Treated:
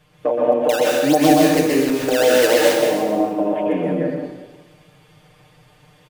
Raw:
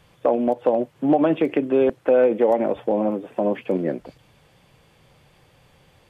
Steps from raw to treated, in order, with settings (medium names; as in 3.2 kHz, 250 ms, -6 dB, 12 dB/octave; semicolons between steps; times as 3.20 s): comb 6.6 ms, depth 98%; 0.69–2.89 s: decimation with a swept rate 12×, swing 160% 3.5 Hz; plate-style reverb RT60 1.2 s, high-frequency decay 1×, pre-delay 110 ms, DRR -4 dB; trim -4 dB